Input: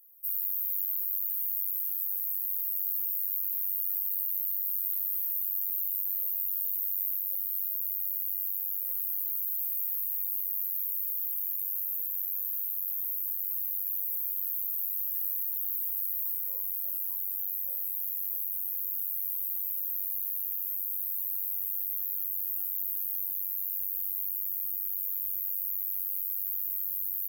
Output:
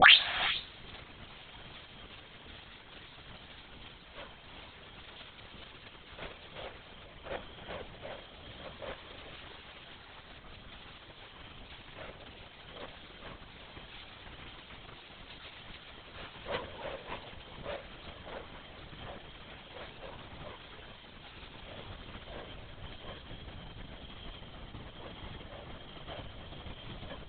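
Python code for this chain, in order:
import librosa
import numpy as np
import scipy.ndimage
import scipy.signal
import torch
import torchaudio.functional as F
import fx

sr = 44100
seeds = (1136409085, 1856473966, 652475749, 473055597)

p1 = fx.tape_start_head(x, sr, length_s=0.56)
p2 = fx.highpass(p1, sr, hz=43.0, slope=6)
p3 = fx.fold_sine(p2, sr, drive_db=19, ceiling_db=-18.0)
p4 = p2 + (p3 * 10.0 ** (-6.5 / 20.0))
p5 = fx.rev_gated(p4, sr, seeds[0], gate_ms=450, shape='rising', drr_db=11.5)
p6 = fx.lpc_vocoder(p5, sr, seeds[1], excitation='whisper', order=16)
y = p6 * 10.0 ** (10.5 / 20.0)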